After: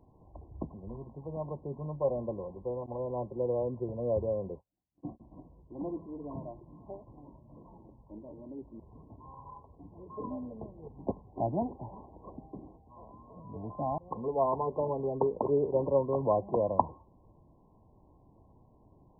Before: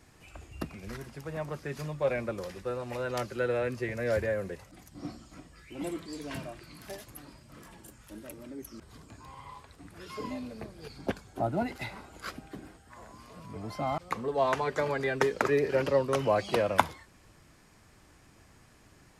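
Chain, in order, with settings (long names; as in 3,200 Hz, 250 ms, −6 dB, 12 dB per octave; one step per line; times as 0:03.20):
0:02.86–0:05.20: noise gate −41 dBFS, range −36 dB
linear-phase brick-wall low-pass 1,100 Hz
level −1 dB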